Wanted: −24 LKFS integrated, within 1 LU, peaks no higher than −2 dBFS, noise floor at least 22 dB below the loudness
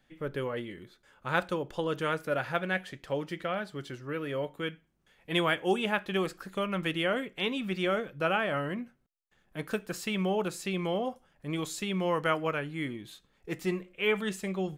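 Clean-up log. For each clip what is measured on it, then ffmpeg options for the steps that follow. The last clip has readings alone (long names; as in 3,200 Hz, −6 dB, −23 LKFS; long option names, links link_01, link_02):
integrated loudness −32.0 LKFS; sample peak −11.0 dBFS; target loudness −24.0 LKFS
→ -af "volume=8dB"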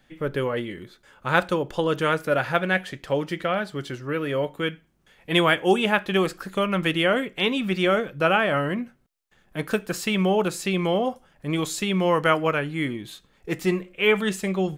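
integrated loudness −24.0 LKFS; sample peak −3.0 dBFS; background noise floor −62 dBFS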